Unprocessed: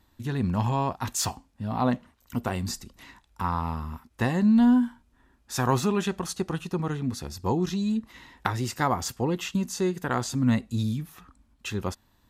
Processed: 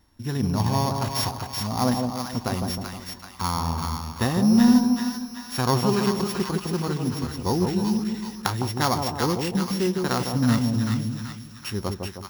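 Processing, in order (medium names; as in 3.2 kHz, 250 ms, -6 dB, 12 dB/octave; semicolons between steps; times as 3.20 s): sorted samples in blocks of 8 samples; two-band feedback delay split 980 Hz, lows 156 ms, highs 382 ms, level -4 dB; trim +1.5 dB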